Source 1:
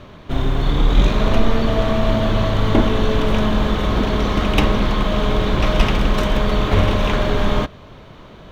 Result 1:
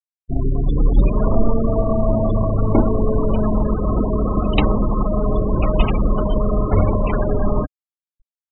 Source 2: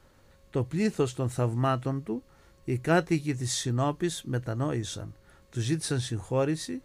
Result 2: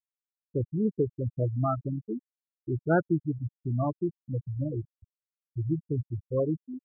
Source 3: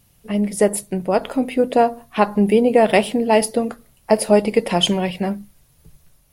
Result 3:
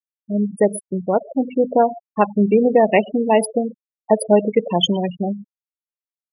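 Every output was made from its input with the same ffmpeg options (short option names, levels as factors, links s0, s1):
-filter_complex "[0:a]asplit=2[s0][s1];[s1]adelay=120,highpass=300,lowpass=3400,asoftclip=type=hard:threshold=0.282,volume=0.126[s2];[s0][s2]amix=inputs=2:normalize=0,afftfilt=real='re*gte(hypot(re,im),0.178)':imag='im*gte(hypot(re,im),0.178)':win_size=1024:overlap=0.75"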